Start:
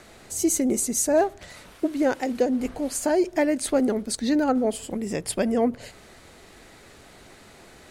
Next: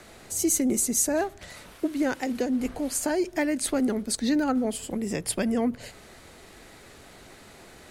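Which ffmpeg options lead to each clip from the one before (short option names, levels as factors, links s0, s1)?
-filter_complex "[0:a]equalizer=f=12000:w=1.8:g=3,acrossover=split=340|920|5100[s0][s1][s2][s3];[s1]acompressor=threshold=0.02:ratio=6[s4];[s0][s4][s2][s3]amix=inputs=4:normalize=0"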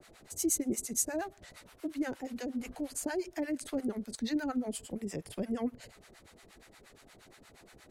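-filter_complex "[0:a]acrossover=split=660[s0][s1];[s0]aeval=exprs='val(0)*(1-1/2+1/2*cos(2*PI*8.5*n/s))':c=same[s2];[s1]aeval=exprs='val(0)*(1-1/2-1/2*cos(2*PI*8.5*n/s))':c=same[s3];[s2][s3]amix=inputs=2:normalize=0,volume=0.596"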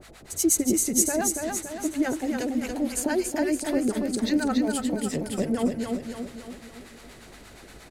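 -filter_complex "[0:a]aeval=exprs='val(0)+0.000631*(sin(2*PI*50*n/s)+sin(2*PI*2*50*n/s)/2+sin(2*PI*3*50*n/s)/3+sin(2*PI*4*50*n/s)/4+sin(2*PI*5*50*n/s)/5)':c=same,asplit=2[s0][s1];[s1]aecho=0:1:283|566|849|1132|1415|1698|1981:0.596|0.31|0.161|0.0838|0.0436|0.0226|0.0118[s2];[s0][s2]amix=inputs=2:normalize=0,volume=2.66"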